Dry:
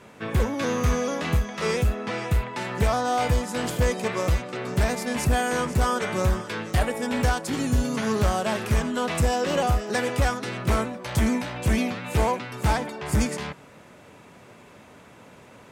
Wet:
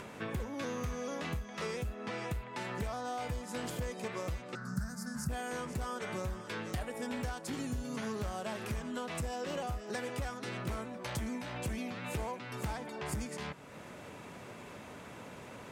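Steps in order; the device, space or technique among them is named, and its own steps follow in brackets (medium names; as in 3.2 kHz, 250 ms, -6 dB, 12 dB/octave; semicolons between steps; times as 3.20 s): upward and downward compression (upward compressor, threshold -37 dBFS; compression 5:1, threshold -32 dBFS, peak gain reduction 13 dB); 4.55–5.29 s: FFT filter 110 Hz 0 dB, 210 Hz +7 dB, 320 Hz -19 dB, 950 Hz -10 dB, 1.5 kHz +6 dB, 2.3 kHz -25 dB, 3.4 kHz -22 dB, 4.9 kHz 0 dB; trim -4 dB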